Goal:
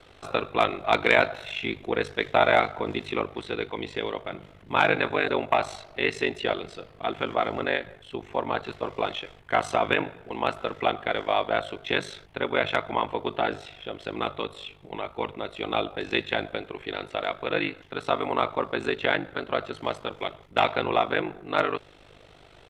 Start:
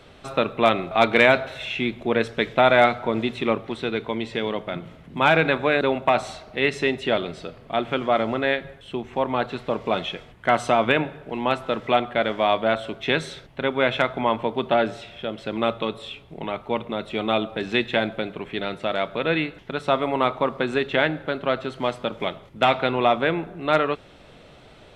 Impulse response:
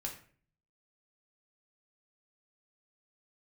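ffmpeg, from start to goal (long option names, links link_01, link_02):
-af "equalizer=frequency=200:width_type=o:width=0.57:gain=-11.5,bandreject=frequency=580:width=13,atempo=1.1,aeval=exprs='val(0)*sin(2*PI*25*n/s)':channel_layout=same"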